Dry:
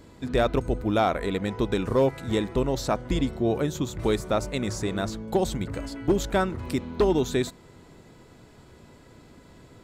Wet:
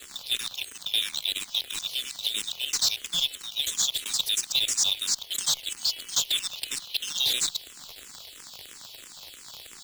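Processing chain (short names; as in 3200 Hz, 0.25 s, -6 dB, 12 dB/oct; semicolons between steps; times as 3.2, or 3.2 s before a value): local time reversal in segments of 78 ms; steep high-pass 3000 Hz 48 dB/oct; overdrive pedal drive 17 dB, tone 6300 Hz, clips at -20.5 dBFS; crackle 72/s -36 dBFS; in parallel at -3.5 dB: soft clip -30 dBFS, distortion -14 dB; on the sum: companded quantiser 4-bit; endless phaser -3 Hz; gain +7 dB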